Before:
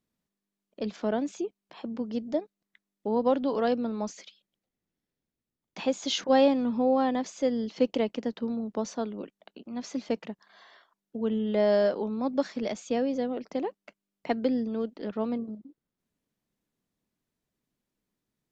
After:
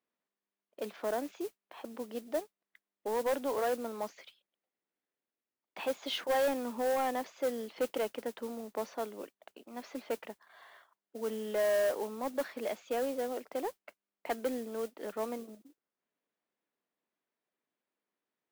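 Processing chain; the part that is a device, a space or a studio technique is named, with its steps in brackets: carbon microphone (band-pass 460–2700 Hz; saturation -25 dBFS, distortion -11 dB; modulation noise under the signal 17 dB)

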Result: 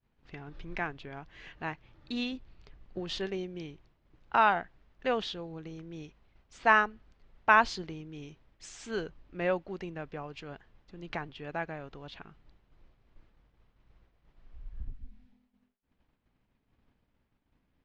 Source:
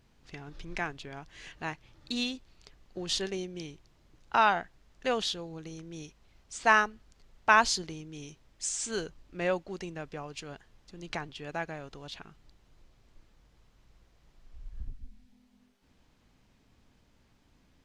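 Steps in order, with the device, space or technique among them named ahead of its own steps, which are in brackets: hearing-loss simulation (low-pass 2.9 kHz 12 dB/octave; expander -57 dBFS); 2.32–3.00 s: bass shelf 190 Hz +6.5 dB

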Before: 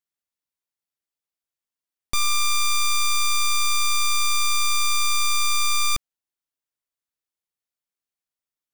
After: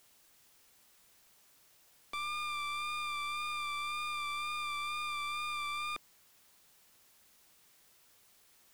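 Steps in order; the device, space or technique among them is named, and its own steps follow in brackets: tape answering machine (band-pass 340–3300 Hz; saturation -26.5 dBFS, distortion -9 dB; wow and flutter 26 cents; white noise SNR 24 dB); trim -5.5 dB

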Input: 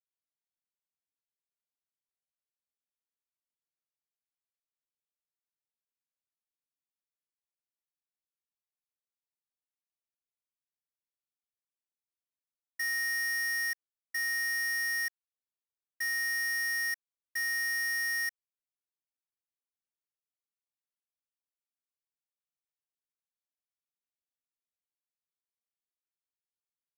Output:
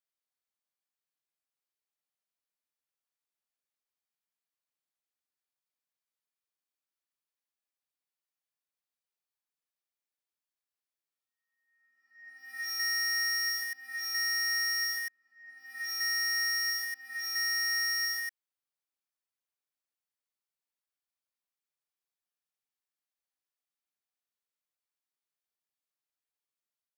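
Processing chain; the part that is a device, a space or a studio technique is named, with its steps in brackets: ghost voice (reverse; reverberation RT60 1.5 s, pre-delay 88 ms, DRR -4 dB; reverse; high-pass 440 Hz 6 dB/octave); trim -3.5 dB

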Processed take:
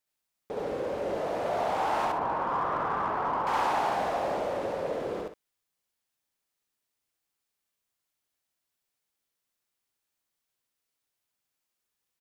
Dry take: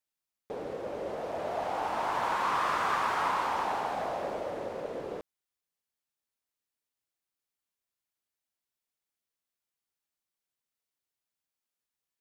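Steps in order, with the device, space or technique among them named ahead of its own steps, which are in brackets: 2.05–3.47 s: Bessel low-pass 800 Hz, order 2; loudspeakers at several distances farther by 23 m 0 dB, 44 m -10 dB; parallel distortion (in parallel at -9.5 dB: hard clipper -34.5 dBFS, distortion -6 dB)

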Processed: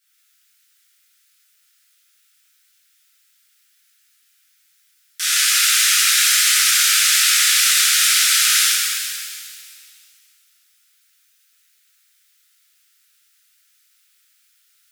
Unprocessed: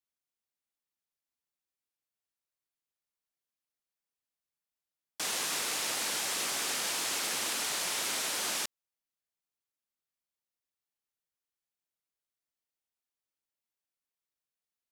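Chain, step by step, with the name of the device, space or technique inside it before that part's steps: noise-reduction cassette on a plain deck (tape noise reduction on one side only encoder only; wow and flutter; white noise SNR 41 dB); steep high-pass 1.3 kHz 96 dB/octave; pitch-shifted reverb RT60 2 s, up +7 st, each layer -8 dB, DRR -11 dB; trim +7 dB

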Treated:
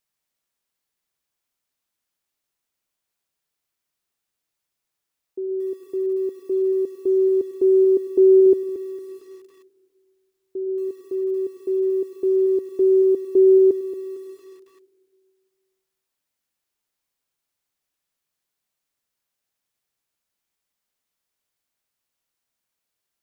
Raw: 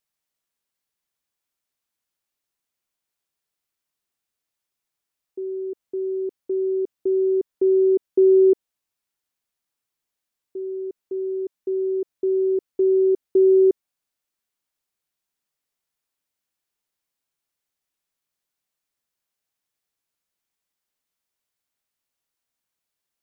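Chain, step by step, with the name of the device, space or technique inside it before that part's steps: 8.46–10.89 s: bass shelf 210 Hz +4.5 dB; compressed reverb return (on a send at -8.5 dB: reverberation RT60 1.9 s, pre-delay 64 ms + compression 10:1, threshold -27 dBFS, peak gain reduction 16.5 dB); on the sum: bit-crushed delay 228 ms, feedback 35%, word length 8-bit, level -12 dB; trim +1.5 dB

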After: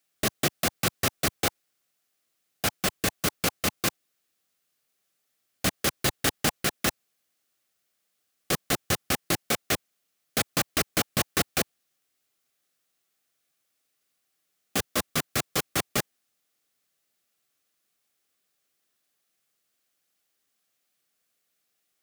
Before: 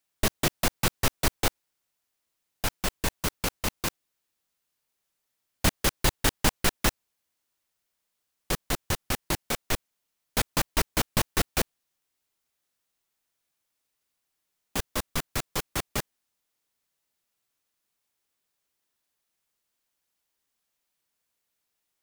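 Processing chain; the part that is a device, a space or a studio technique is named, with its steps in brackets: PA system with an anti-feedback notch (high-pass 110 Hz 12 dB/octave; Butterworth band-stop 940 Hz, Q 5; peak limiter -16.5 dBFS, peak gain reduction 6 dB); trim +4 dB

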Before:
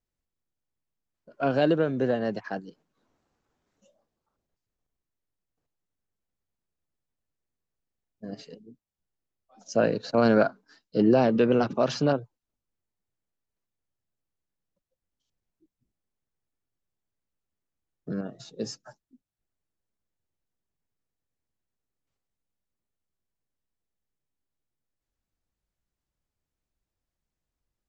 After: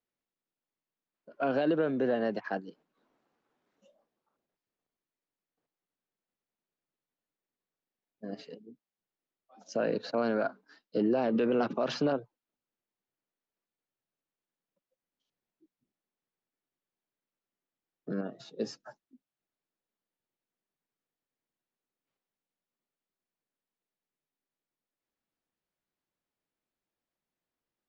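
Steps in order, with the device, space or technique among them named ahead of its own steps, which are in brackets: DJ mixer with the lows and highs turned down (three-band isolator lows -20 dB, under 170 Hz, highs -13 dB, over 4.5 kHz; peak limiter -19.5 dBFS, peak gain reduction 11 dB)

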